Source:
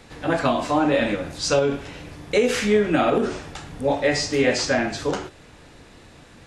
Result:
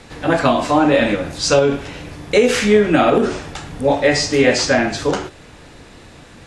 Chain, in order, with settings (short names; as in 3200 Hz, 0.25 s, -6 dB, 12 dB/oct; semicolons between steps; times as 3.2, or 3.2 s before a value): steep low-pass 12000 Hz; gain +6 dB